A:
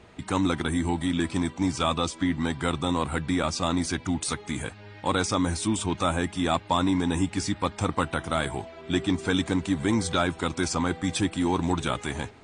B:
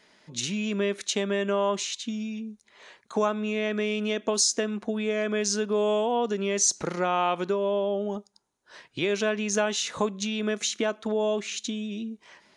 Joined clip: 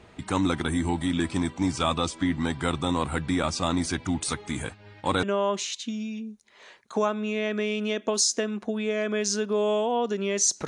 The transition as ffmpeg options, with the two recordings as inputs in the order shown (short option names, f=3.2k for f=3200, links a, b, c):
-filter_complex "[0:a]asettb=1/sr,asplit=3[a][b][c];[a]atrim=end=4.494[d];[b]atrim=start=4.49:end=5.23,asetpts=PTS-STARTPTS,afade=t=in:d=0.004:c=qsin,afade=t=out:st=0.736:d=0.004:c=qsin,agate=range=-33dB:threshold=-42dB:ratio=3:release=100:detection=peak[e];[c]atrim=start=5.226[f];[d][e]acrossfade=d=0.004:c1=hsin:c2=qsin[g];[g][f]acrossfade=d=0.004:c1=qsin:c2=hsin,apad=whole_dur=10.67,atrim=end=10.67,atrim=end=5.232[h];[1:a]atrim=start=1.428:end=6.87[i];[h][i]acrossfade=d=0.004:c1=hsin:c2=hsin"